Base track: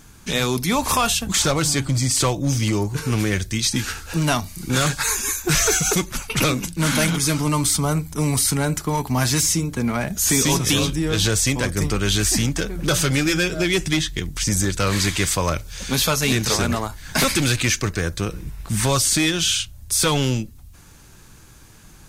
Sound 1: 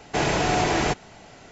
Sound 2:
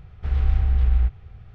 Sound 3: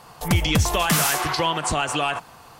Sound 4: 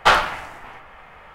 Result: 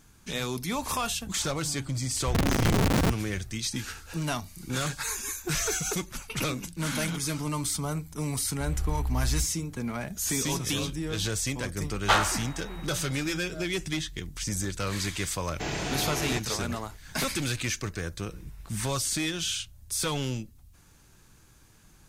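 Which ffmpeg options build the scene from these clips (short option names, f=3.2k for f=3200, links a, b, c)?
-filter_complex "[2:a]asplit=2[a][b];[0:a]volume=-10.5dB[c];[a]aeval=exprs='(mod(6.31*val(0)+1,2)-1)/6.31':c=same[d];[4:a]aeval=exprs='val(0)+0.00631*sin(2*PI*3800*n/s)':c=same[e];[1:a]equalizer=f=740:t=o:w=2.2:g=-6[f];[d]atrim=end=1.54,asetpts=PTS-STARTPTS,volume=-3dB,afade=t=in:d=0.004:c=hsin,afade=t=out:st=1.536:d=0.004:c=hsin,adelay=2030[g];[b]atrim=end=1.54,asetpts=PTS-STARTPTS,volume=-10dB,afade=t=in:d=0.004:c=hsin,afade=t=out:st=1.536:d=0.004:c=hsin,adelay=8360[h];[e]atrim=end=1.34,asetpts=PTS-STARTPTS,volume=-8dB,afade=t=in:d=0.004:c=hsin,afade=t=out:st=1.336:d=0.004:c=hsin,adelay=12030[i];[f]atrim=end=1.51,asetpts=PTS-STARTPTS,volume=-6.5dB,afade=t=in:d=0.004:c=hsin,afade=t=out:st=1.506:d=0.004:c=hsin,adelay=15460[j];[c][g][h][i][j]amix=inputs=5:normalize=0"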